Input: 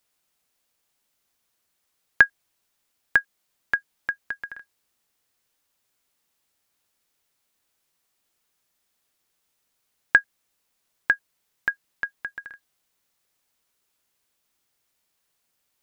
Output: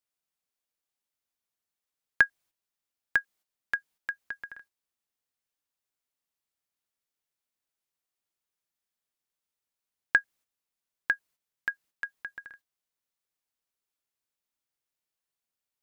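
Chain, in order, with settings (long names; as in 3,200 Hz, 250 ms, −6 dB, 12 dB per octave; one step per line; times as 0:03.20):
noise gate −50 dBFS, range −9 dB
level −6 dB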